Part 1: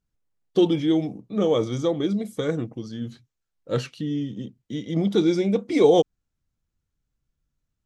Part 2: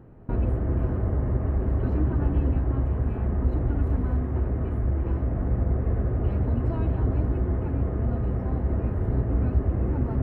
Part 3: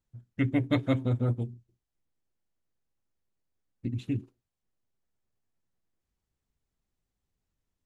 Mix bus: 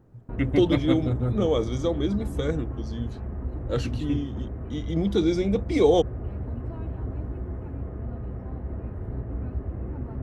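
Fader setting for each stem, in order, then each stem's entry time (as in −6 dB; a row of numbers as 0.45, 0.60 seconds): −2.5, −8.0, +1.0 decibels; 0.00, 0.00, 0.00 seconds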